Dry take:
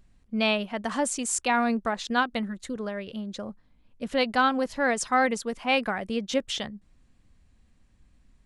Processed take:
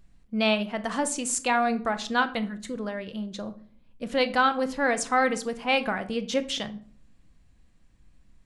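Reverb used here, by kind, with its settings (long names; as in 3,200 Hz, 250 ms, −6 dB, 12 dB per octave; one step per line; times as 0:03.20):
rectangular room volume 550 cubic metres, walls furnished, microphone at 0.71 metres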